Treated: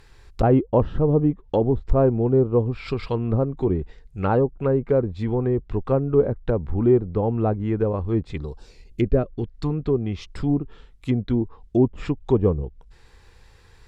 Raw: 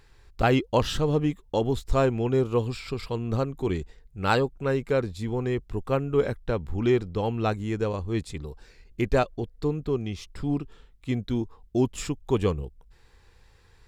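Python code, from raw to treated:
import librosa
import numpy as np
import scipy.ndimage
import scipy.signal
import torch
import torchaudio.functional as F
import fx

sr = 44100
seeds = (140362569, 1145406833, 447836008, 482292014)

y = fx.peak_eq(x, sr, hz=fx.line((8.36, 2800.0), (9.7, 420.0)), db=-14.0, octaves=0.66, at=(8.36, 9.7), fade=0.02)
y = fx.env_lowpass_down(y, sr, base_hz=720.0, full_db=-22.5)
y = F.gain(torch.from_numpy(y), 5.5).numpy()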